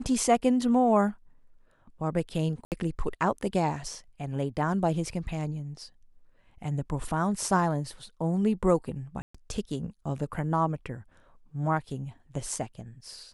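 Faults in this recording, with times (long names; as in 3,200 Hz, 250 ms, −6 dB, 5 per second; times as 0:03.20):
0:02.65–0:02.72: drop-out 68 ms
0:09.22–0:09.35: drop-out 125 ms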